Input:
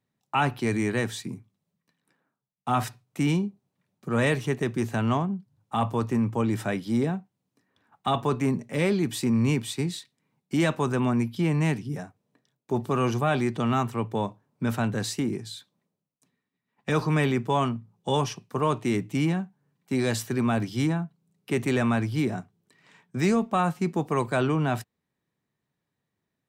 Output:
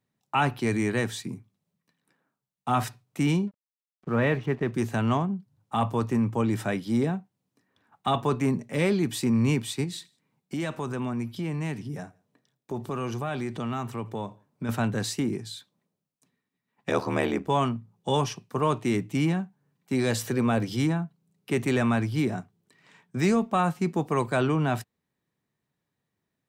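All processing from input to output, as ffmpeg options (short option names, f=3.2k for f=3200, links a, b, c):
-filter_complex "[0:a]asettb=1/sr,asplit=3[a][b][c];[a]atrim=end=3.474[d];[b]atrim=start=3.47:end=4.73,asetpts=PTS-STARTPTS,afade=t=in:d=0.004:c=qsin,afade=t=out:st=1.256:d=0.004:c=qsin,lowpass=2.4k,aeval=exprs='sgn(val(0))*max(abs(val(0))-0.00224,0)':c=same[e];[c]atrim=start=4.726[f];[d][e]acrossfade=d=0.004:c1=hsin:c2=qsin[g];[g][f]acrossfade=d=0.004:c1=qsin:c2=hsin,asettb=1/sr,asplit=3[h][i][j];[h]atrim=end=9.844[k];[i]atrim=start=9.84:end=14.69,asetpts=PTS-STARTPTS,afade=t=in:d=0.004:c=qsin,afade=t=out:st=4.846:d=0.004:c=qsin,acompressor=threshold=-32dB:ratio=2:attack=3.2:release=140:knee=1:detection=peak,aecho=1:1:84|168:0.0631|0.0233,atrim=end_sample=213885[l];[j]atrim=start=14.686[m];[k][l]acrossfade=d=0.004:c1=hsin:c2=qsin[n];[n][m]acrossfade=d=0.004:c1=qsin:c2=hsin,asettb=1/sr,asplit=3[o][p][q];[o]atrim=end=16.894[r];[p]atrim=start=16.89:end=17.48,asetpts=PTS-STARTPTS,afade=t=in:d=0.004:c=qsin,afade=t=out:st=0.586:d=0.004:c=qsin,highpass=f=170:w=0.5412,highpass=f=170:w=1.3066,aeval=exprs='val(0)*sin(2*PI*39*n/s)':c=same,equalizer=f=650:w=1.6:g=7.5[s];[q]atrim=start=17.476[t];[r][s]acrossfade=d=0.004:c1=hsin:c2=qsin[u];[u][t]acrossfade=d=0.004:c1=qsin:c2=hsin,asettb=1/sr,asplit=3[v][w][x];[v]atrim=end=20.104[y];[w]atrim=start=20.1:end=20.77,asetpts=PTS-STARTPTS,afade=t=in:d=0.004:c=qsin,afade=t=out:st=0.666:d=0.004:c=qsin,equalizer=f=500:t=o:w=0.24:g=9,acompressor=mode=upward:threshold=-27dB:ratio=2.5:attack=3.2:release=140:knee=2.83:detection=peak[z];[x]atrim=start=20.766[aa];[y][z]acrossfade=d=0.004:c1=hsin:c2=qsin[ab];[ab][aa]acrossfade=d=0.004:c1=qsin:c2=hsin"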